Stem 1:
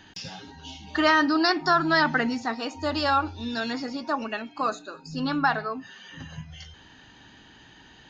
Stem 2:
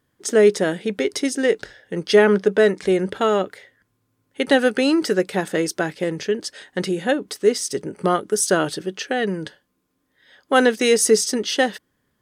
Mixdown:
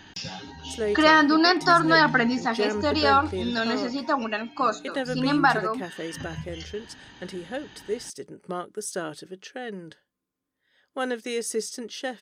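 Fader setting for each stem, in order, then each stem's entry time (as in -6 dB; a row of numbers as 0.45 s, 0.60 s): +3.0 dB, -13.0 dB; 0.00 s, 0.45 s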